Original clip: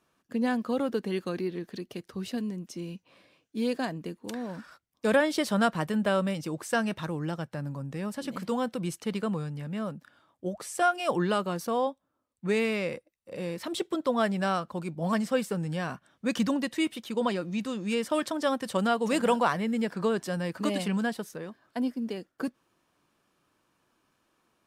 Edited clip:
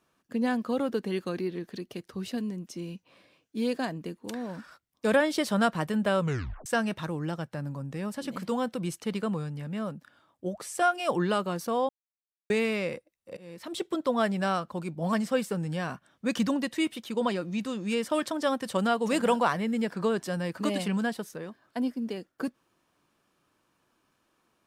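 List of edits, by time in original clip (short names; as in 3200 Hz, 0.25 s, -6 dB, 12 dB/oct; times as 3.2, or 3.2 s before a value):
6.19 tape stop 0.47 s
11.89–12.5 mute
13.37–13.9 fade in, from -22.5 dB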